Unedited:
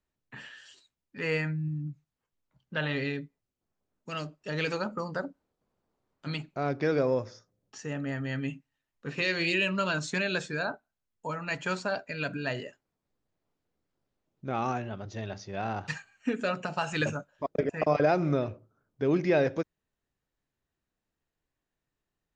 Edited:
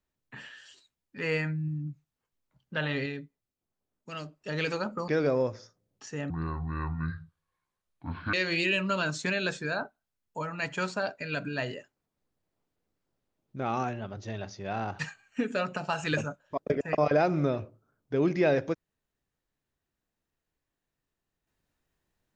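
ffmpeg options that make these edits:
-filter_complex "[0:a]asplit=6[s0][s1][s2][s3][s4][s5];[s0]atrim=end=3.062[s6];[s1]atrim=start=3.058:end=4.362,asetpts=PTS-STARTPTS,volume=0.668[s7];[s2]atrim=start=4.358:end=5.082[s8];[s3]atrim=start=6.798:end=8.024[s9];[s4]atrim=start=8.02:end=9.22,asetpts=PTS-STARTPTS,asetrate=26019,aresample=44100[s10];[s5]atrim=start=9.216[s11];[s6][s7]acrossfade=d=0.004:c1=hsin:c2=hsin[s12];[s12][s8]acrossfade=d=0.004:c1=hsin:c2=hsin[s13];[s13][s9]acrossfade=d=0.004:c1=hsin:c2=hsin[s14];[s14][s10]acrossfade=d=0.004:c1=hsin:c2=hsin[s15];[s15][s11]acrossfade=d=0.004:c1=hsin:c2=hsin"

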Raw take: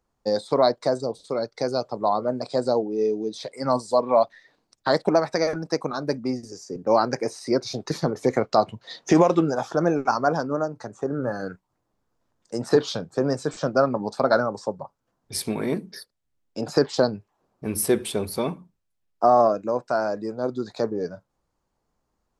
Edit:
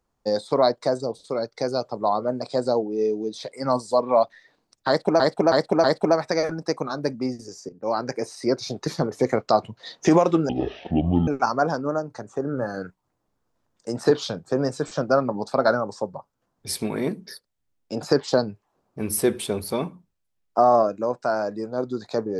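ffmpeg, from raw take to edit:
-filter_complex "[0:a]asplit=7[s0][s1][s2][s3][s4][s5][s6];[s0]atrim=end=5.202[s7];[s1]atrim=start=4.878:end=5.202[s8];[s2]atrim=start=4.878:end=5.202[s9];[s3]atrim=start=4.878:end=6.73,asetpts=PTS-STARTPTS,afade=t=out:st=1.848:d=0.004:c=hsin:silence=0.177828[s10];[s4]atrim=start=6.73:end=9.534,asetpts=PTS-STARTPTS,afade=t=in:d=0.85:c=qsin:silence=0.177828[s11];[s5]atrim=start=9.53:end=9.93,asetpts=PTS-STARTPTS,asetrate=22491,aresample=44100,atrim=end_sample=34588,asetpts=PTS-STARTPTS[s12];[s6]atrim=start=9.926[s13];[s7][s8]acrossfade=d=0.004:c1=hsin:c2=hsin[s14];[s14][s9]acrossfade=d=0.004:c1=hsin:c2=hsin[s15];[s10][s11]concat=n=2:v=0:a=1[s16];[s15][s16]acrossfade=d=0.004:c1=hsin:c2=hsin[s17];[s17][s12]acrossfade=d=0.004:c1=hsin:c2=hsin[s18];[s18][s13]acrossfade=d=0.004:c1=hsin:c2=hsin"

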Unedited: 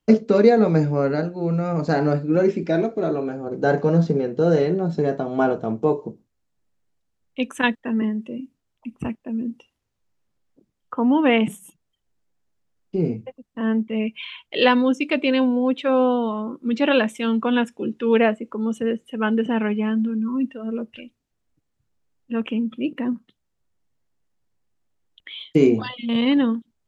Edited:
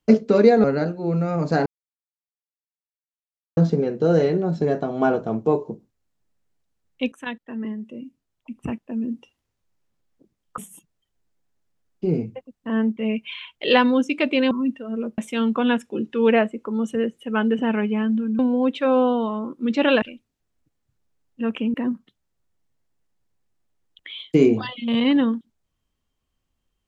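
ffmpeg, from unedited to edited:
-filter_complex "[0:a]asplit=11[s0][s1][s2][s3][s4][s5][s6][s7][s8][s9][s10];[s0]atrim=end=0.642[s11];[s1]atrim=start=1.008:end=2.03,asetpts=PTS-STARTPTS,afade=t=out:st=1.018:d=0.004:c=hsin[s12];[s2]atrim=start=2.03:end=3.94,asetpts=PTS-STARTPTS,volume=0[s13];[s3]atrim=start=3.94:end=7.49,asetpts=PTS-STARTPTS,afade=t=in:d=0.004:c=hsin,afade=t=out:st=3.546:d=0.004:c=hsin:silence=0.211349[s14];[s4]atrim=start=7.49:end=10.952,asetpts=PTS-STARTPTS,afade=t=in:d=1.81:silence=0.211349[s15];[s5]atrim=start=11.488:end=15.422[s16];[s6]atrim=start=20.258:end=20.932[s17];[s7]atrim=start=17.048:end=20.262[s18];[s8]atrim=start=15.418:end=17.052[s19];[s9]atrim=start=20.928:end=22.652[s20];[s10]atrim=start=22.948[s21];[s12][s13][s14][s15]concat=n=4:v=0:a=1[s22];[s11][s22]acrossfade=d=0.004:c1=hsin:c2=hsin[s23];[s23][s16]acrossfade=d=0.004:c1=hsin:c2=hsin[s24];[s24][s17]acrossfade=d=0.004:c1=hsin:c2=hsin[s25];[s25][s18]acrossfade=d=0.004:c1=hsin:c2=hsin[s26];[s26][s19]acrossfade=d=0.004:c1=hsin:c2=hsin[s27];[s27][s20]acrossfade=d=0.004:c1=hsin:c2=hsin[s28];[s28][s21]acrossfade=d=0.004:c1=hsin:c2=hsin"

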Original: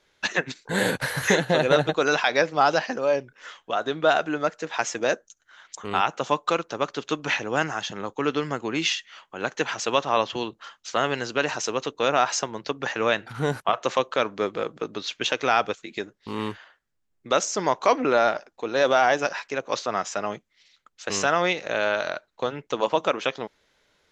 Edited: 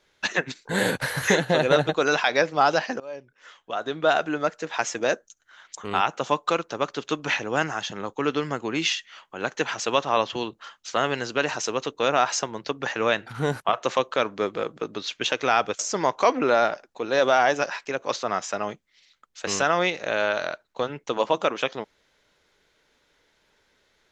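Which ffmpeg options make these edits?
-filter_complex "[0:a]asplit=3[s0][s1][s2];[s0]atrim=end=3,asetpts=PTS-STARTPTS,afade=t=out:st=2.996:d=0.004:c=hsin:silence=0.112202[s3];[s1]atrim=start=3:end=15.792,asetpts=PTS-STARTPTS,afade=t=in:d=1.2:silence=0.112202[s4];[s2]atrim=start=17.418[s5];[s3][s4]concat=n=2:v=0:a=1[s6];[s6][s5]acrossfade=d=0.004:c1=hsin:c2=hsin"

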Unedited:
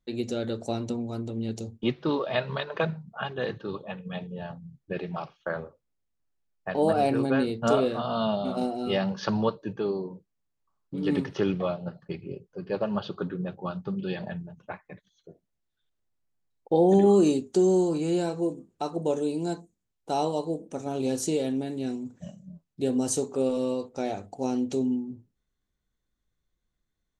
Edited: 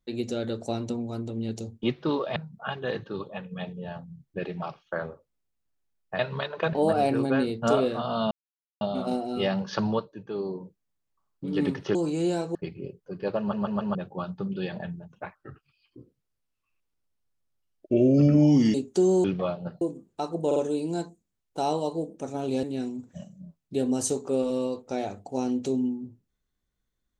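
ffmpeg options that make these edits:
-filter_complex "[0:a]asplit=20[s0][s1][s2][s3][s4][s5][s6][s7][s8][s9][s10][s11][s12][s13][s14][s15][s16][s17][s18][s19];[s0]atrim=end=2.362[s20];[s1]atrim=start=2.898:end=6.732[s21];[s2]atrim=start=2.358:end=2.902[s22];[s3]atrim=start=6.728:end=8.31,asetpts=PTS-STARTPTS,afade=t=out:st=1.578:d=0.004:c=hsin,apad=pad_dur=0.5[s23];[s4]atrim=start=8.31:end=9.66,asetpts=PTS-STARTPTS,afade=t=in:d=0.004:c=hsin,afade=t=out:st=1.07:d=0.28:silence=0.398107[s24];[s5]atrim=start=9.66:end=9.74,asetpts=PTS-STARTPTS,volume=0.398[s25];[s6]atrim=start=9.74:end=11.452,asetpts=PTS-STARTPTS,afade=t=in:d=0.28:silence=0.398107[s26];[s7]atrim=start=17.828:end=18.432[s27];[s8]atrim=start=12.018:end=13.002[s28];[s9]atrim=start=12.858:end=13.002[s29];[s10]atrim=start=12.858:end=13.002[s30];[s11]atrim=start=12.858:end=13.002[s31];[s12]atrim=start=13.418:end=14.824[s32];[s13]atrim=start=14.82:end=17.33,asetpts=PTS-STARTPTS,asetrate=32634,aresample=44100,atrim=end_sample=149582,asetpts=PTS-STARTPTS[s33];[s14]atrim=start=17.326:end=17.832[s34];[s15]atrim=start=11.448:end=12.022[s35];[s16]atrim=start=18.428:end=19.132[s36];[s17]atrim=start=19.078:end=19.132[s37];[s18]atrim=start=19.078:end=21.152[s38];[s19]atrim=start=21.698[s39];[s20][s21]acrossfade=d=0.004:c1=hsin:c2=hsin[s40];[s40][s22]acrossfade=d=0.004:c1=hsin:c2=hsin[s41];[s23][s24][s25][s26]concat=n=4:v=0:a=1[s42];[s41][s42]acrossfade=d=0.004:c1=hsin:c2=hsin[s43];[s43][s27]acrossfade=d=0.004:c1=hsin:c2=hsin[s44];[s44][s28]acrossfade=d=0.004:c1=hsin:c2=hsin[s45];[s45][s29]acrossfade=d=0.004:c1=hsin:c2=hsin[s46];[s46][s30]acrossfade=d=0.004:c1=hsin:c2=hsin[s47];[s47][s31]acrossfade=d=0.004:c1=hsin:c2=hsin[s48];[s48][s32]acrossfade=d=0.004:c1=hsin:c2=hsin[s49];[s49][s33]acrossfade=d=0.004:c1=hsin:c2=hsin[s50];[s50][s34]acrossfade=d=0.004:c1=hsin:c2=hsin[s51];[s51][s35]acrossfade=d=0.004:c1=hsin:c2=hsin[s52];[s52][s36]acrossfade=d=0.004:c1=hsin:c2=hsin[s53];[s53][s37]acrossfade=d=0.004:c1=hsin:c2=hsin[s54];[s54][s38]acrossfade=d=0.004:c1=hsin:c2=hsin[s55];[s55][s39]acrossfade=d=0.004:c1=hsin:c2=hsin"

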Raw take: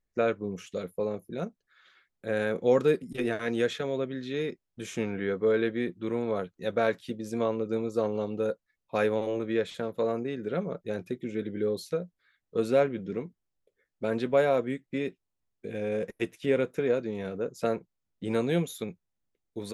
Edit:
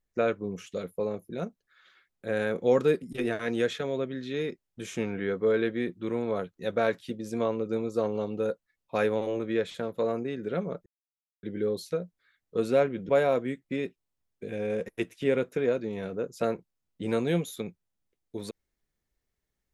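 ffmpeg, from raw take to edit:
-filter_complex "[0:a]asplit=4[s0][s1][s2][s3];[s0]atrim=end=10.86,asetpts=PTS-STARTPTS,afade=t=out:st=10.856:d=0.004:c=hsin[s4];[s1]atrim=start=10.86:end=11.43,asetpts=PTS-STARTPTS,volume=0[s5];[s2]atrim=start=11.43:end=13.092,asetpts=PTS-STARTPTS,afade=t=in:d=0.004:c=hsin[s6];[s3]atrim=start=14.308[s7];[s4][s5][s6]concat=n=3:v=0:a=1[s8];[s8][s7]acrossfade=d=0.004:c1=hsin:c2=hsin"

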